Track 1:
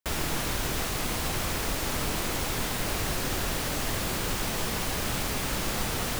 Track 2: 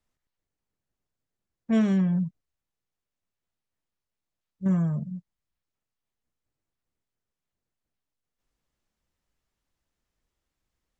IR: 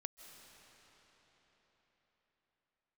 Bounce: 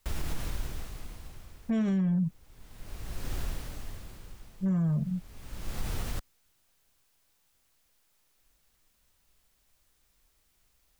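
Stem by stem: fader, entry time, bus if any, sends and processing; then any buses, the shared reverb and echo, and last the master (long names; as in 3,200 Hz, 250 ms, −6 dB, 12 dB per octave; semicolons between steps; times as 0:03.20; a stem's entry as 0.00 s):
0:01.66 −10 dB → 0:02.12 −20.5 dB → 0:02.98 −20.5 dB → 0:03.40 −10.5 dB, 0.00 s, no send, low-shelf EQ 190 Hz +6 dB; automatic ducking −21 dB, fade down 1.35 s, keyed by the second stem
+1.5 dB, 0.00 s, no send, no processing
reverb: not used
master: low-shelf EQ 80 Hz +11.5 dB; bit-depth reduction 12 bits, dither triangular; brickwall limiter −22.5 dBFS, peak gain reduction 10 dB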